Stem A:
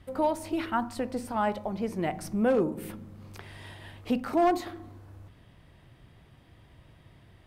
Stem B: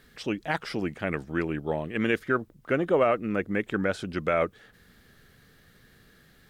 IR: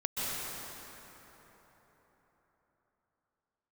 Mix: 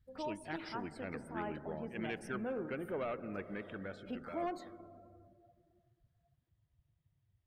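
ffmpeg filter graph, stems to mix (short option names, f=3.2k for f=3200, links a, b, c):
-filter_complex "[0:a]volume=-16dB,asplit=2[a][b];[b]volume=-22.5dB[c];[1:a]asoftclip=type=tanh:threshold=-17.5dB,volume=-15.5dB,afade=t=out:st=3.42:d=0.78:silence=0.446684,asplit=2[d][e];[e]volume=-16dB[f];[2:a]atrim=start_sample=2205[g];[c][f]amix=inputs=2:normalize=0[h];[h][g]afir=irnorm=-1:irlink=0[i];[a][d][i]amix=inputs=3:normalize=0,highshelf=f=3.1k:g=5.5,afftdn=nr=19:nf=-56"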